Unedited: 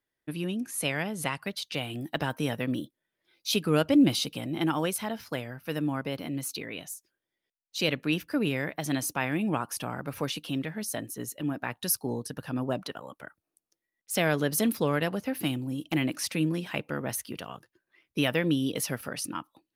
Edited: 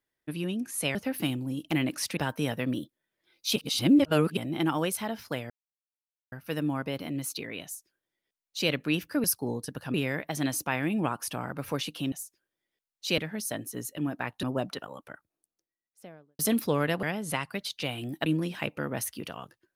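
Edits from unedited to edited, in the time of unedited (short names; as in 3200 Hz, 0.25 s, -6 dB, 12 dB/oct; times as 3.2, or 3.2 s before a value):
0.95–2.18 swap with 15.16–16.38
3.57–4.38 reverse
5.51 insert silence 0.82 s
6.83–7.89 copy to 10.61
11.86–12.56 move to 8.43
13.06–14.52 studio fade out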